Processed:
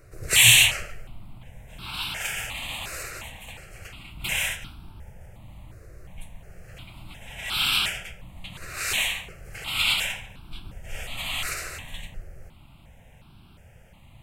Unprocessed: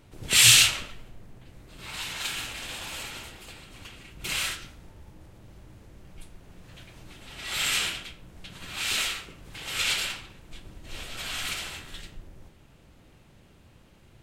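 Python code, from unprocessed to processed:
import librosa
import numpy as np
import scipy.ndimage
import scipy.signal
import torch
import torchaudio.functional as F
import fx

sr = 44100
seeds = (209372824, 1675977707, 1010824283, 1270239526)

p1 = 10.0 ** (-15.5 / 20.0) * np.tanh(x / 10.0 ** (-15.5 / 20.0))
p2 = x + F.gain(torch.from_numpy(p1), -6.0).numpy()
p3 = fx.phaser_held(p2, sr, hz=2.8, low_hz=890.0, high_hz=1900.0)
y = F.gain(torch.from_numpy(p3), 2.5).numpy()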